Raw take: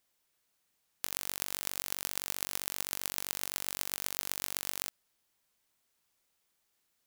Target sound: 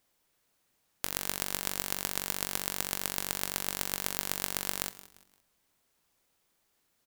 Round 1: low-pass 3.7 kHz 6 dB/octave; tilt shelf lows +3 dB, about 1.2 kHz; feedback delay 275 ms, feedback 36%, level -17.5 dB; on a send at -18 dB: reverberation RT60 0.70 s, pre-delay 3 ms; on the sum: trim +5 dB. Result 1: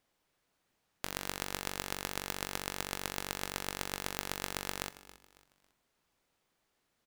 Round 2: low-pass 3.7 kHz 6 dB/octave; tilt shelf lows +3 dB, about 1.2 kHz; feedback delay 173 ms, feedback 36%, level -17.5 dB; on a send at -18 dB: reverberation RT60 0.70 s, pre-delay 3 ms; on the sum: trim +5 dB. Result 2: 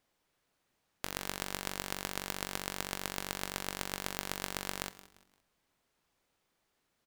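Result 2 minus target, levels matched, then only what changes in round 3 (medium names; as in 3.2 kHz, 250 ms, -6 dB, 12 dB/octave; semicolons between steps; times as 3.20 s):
4 kHz band +2.5 dB
remove: low-pass 3.7 kHz 6 dB/octave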